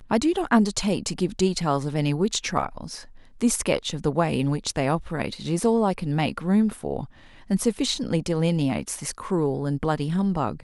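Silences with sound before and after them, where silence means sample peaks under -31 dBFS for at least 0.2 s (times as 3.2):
3–3.41
7.05–7.5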